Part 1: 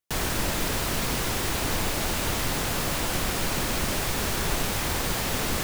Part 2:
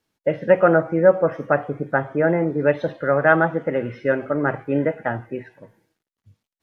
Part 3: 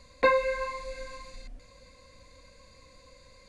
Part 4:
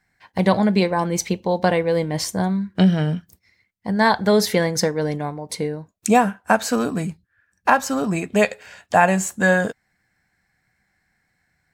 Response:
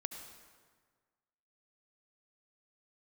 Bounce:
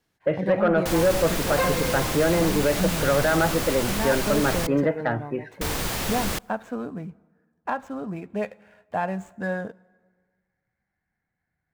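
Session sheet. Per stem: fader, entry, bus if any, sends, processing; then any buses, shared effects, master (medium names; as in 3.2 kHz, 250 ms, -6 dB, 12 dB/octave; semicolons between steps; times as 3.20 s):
-0.5 dB, 0.75 s, muted 4.67–5.61 s, send -23.5 dB, none
+0.5 dB, 0.00 s, no send, peak limiter -10 dBFS, peak gain reduction 8 dB; short-mantissa float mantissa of 8-bit
-2.0 dB, 1.35 s, no send, none
-10.5 dB, 0.00 s, send -17 dB, median filter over 9 samples; treble shelf 2.4 kHz -11.5 dB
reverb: on, RT60 1.6 s, pre-delay 62 ms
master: saturation -12 dBFS, distortion -18 dB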